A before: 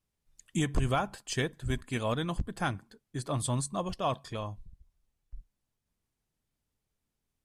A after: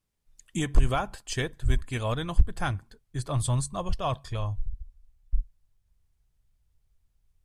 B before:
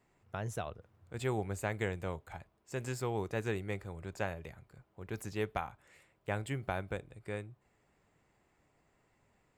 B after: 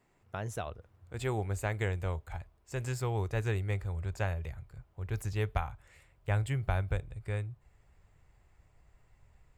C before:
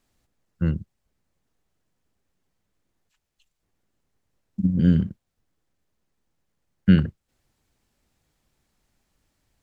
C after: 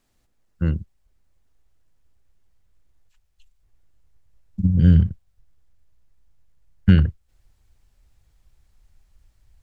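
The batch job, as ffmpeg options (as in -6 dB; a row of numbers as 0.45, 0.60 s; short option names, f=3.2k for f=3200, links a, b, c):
-af "asubboost=boost=11:cutoff=74,volume=1.5dB"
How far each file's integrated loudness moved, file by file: +3.0, +3.5, +2.5 LU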